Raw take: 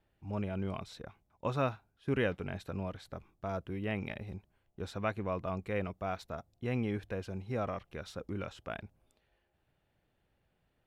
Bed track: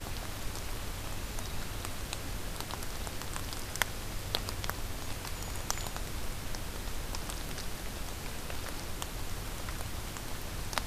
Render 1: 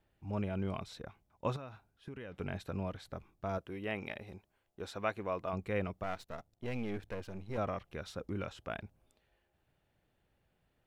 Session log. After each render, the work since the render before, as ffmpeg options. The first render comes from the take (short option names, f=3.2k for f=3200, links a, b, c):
-filter_complex "[0:a]asettb=1/sr,asplit=3[a][b][c];[a]atrim=end=1.564[d];[b]atrim=start=1.56:end=2.4,asetpts=PTS-STARTPTS,afade=t=in:d=0.004:c=qsin,afade=t=out:st=0.836:d=0.004:c=qsin,acompressor=threshold=-41dB:ratio=16:attack=3.2:release=140:knee=1:detection=peak[e];[c]atrim=start=2.396[f];[d][e]acrossfade=d=0.004:c1=hsin:c2=qsin[g];[g][f]acrossfade=d=0.004:c1=qsin:c2=hsin,asettb=1/sr,asplit=3[h][i][j];[h]atrim=end=3.584[k];[i]atrim=start=3.58:end=5.53,asetpts=PTS-STARTPTS,afade=t=in:d=0.004:c=qsin,afade=t=out:st=1.946:d=0.004:c=qsin,bass=f=250:g=-9,treble=f=4k:g=1[l];[j]atrim=start=5.526[m];[k][l]acrossfade=d=0.004:c1=hsin:c2=qsin[n];[n][m]acrossfade=d=0.004:c1=qsin:c2=hsin,asettb=1/sr,asplit=3[o][p][q];[o]atrim=end=6.034[r];[p]atrim=start=6.03:end=7.58,asetpts=PTS-STARTPTS,afade=t=in:d=0.004:c=qsin,afade=t=out:st=1.546:d=0.004:c=qsin,aeval=exprs='if(lt(val(0),0),0.251*val(0),val(0))':c=same[s];[q]atrim=start=7.576[t];[r][s]acrossfade=d=0.004:c1=hsin:c2=qsin[u];[u][t]acrossfade=d=0.004:c1=qsin:c2=hsin"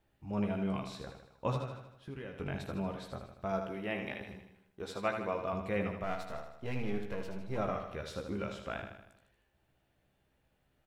-filter_complex "[0:a]asplit=2[a][b];[b]adelay=15,volume=-6dB[c];[a][c]amix=inputs=2:normalize=0,aecho=1:1:78|156|234|312|390|468|546:0.447|0.241|0.13|0.0703|0.038|0.0205|0.0111"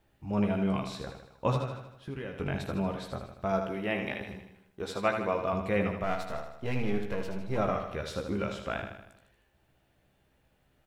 -af "volume=5.5dB"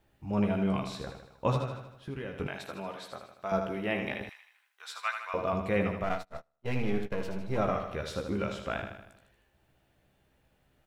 -filter_complex "[0:a]asettb=1/sr,asplit=3[a][b][c];[a]atrim=end=2.474[d];[b]atrim=start=2.47:end=3.52,asetpts=PTS-STARTPTS,afade=t=in:d=0.004:c=qsin,afade=t=out:st=1.046:d=0.004:c=qsin,highpass=f=800:p=1[e];[c]atrim=start=3.516[f];[d][e]acrossfade=d=0.004:c1=hsin:c2=qsin[g];[g][f]acrossfade=d=0.004:c1=qsin:c2=hsin,asettb=1/sr,asplit=3[h][i][j];[h]atrim=end=4.294[k];[i]atrim=start=4.29:end=5.34,asetpts=PTS-STARTPTS,afade=t=in:d=0.004:c=qsin,afade=t=out:st=1.046:d=0.004:c=qsin,highpass=f=1.1k:w=0.5412,highpass=f=1.1k:w=1.3066[l];[j]atrim=start=5.336[m];[k][l]acrossfade=d=0.004:c1=hsin:c2=qsin[n];[n][m]acrossfade=d=0.004:c1=qsin:c2=hsin,asettb=1/sr,asplit=3[o][p][q];[o]atrim=end=6.094[r];[p]atrim=start=6.09:end=7.14,asetpts=PTS-STARTPTS,afade=t=in:d=0.004:c=qsin,afade=t=out:st=1.046:d=0.004:c=qsin,agate=range=-33dB:threshold=-34dB:ratio=16:release=100:detection=peak[s];[q]atrim=start=7.136[t];[r][s]acrossfade=d=0.004:c1=hsin:c2=qsin[u];[u][t]acrossfade=d=0.004:c1=qsin:c2=hsin"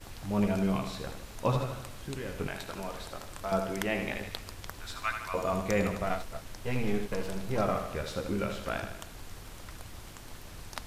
-filter_complex "[1:a]volume=-7dB[a];[0:a][a]amix=inputs=2:normalize=0"